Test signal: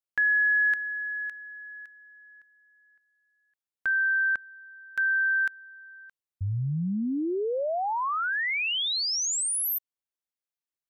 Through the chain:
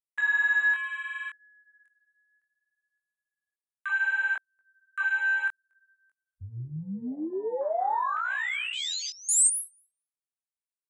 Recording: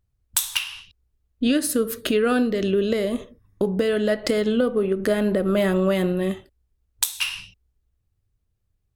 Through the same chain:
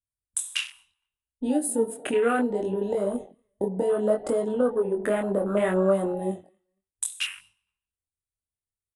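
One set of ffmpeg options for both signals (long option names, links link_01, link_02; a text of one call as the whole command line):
ffmpeg -i in.wav -filter_complex "[0:a]asplit=2[link_01][link_02];[link_02]adelay=233,lowpass=frequency=2100:poles=1,volume=-20.5dB,asplit=2[link_03][link_04];[link_04]adelay=233,lowpass=frequency=2100:poles=1,volume=0.23[link_05];[link_01][link_03][link_05]amix=inputs=3:normalize=0,afwtdn=0.0398,adynamicequalizer=threshold=0.0112:dfrequency=820:dqfactor=1.2:tfrequency=820:tqfactor=1.2:attack=5:release=100:ratio=0.375:range=2.5:mode=boostabove:tftype=bell,aresample=22050,aresample=44100,bandreject=frequency=4400:width=17,flanger=delay=20:depth=5.6:speed=0.66,acrossover=split=360[link_06][link_07];[link_07]aexciter=amount=15.1:drive=1.9:freq=7900[link_08];[link_06][link_08]amix=inputs=2:normalize=0,lowshelf=frequency=190:gain=-8.5" out.wav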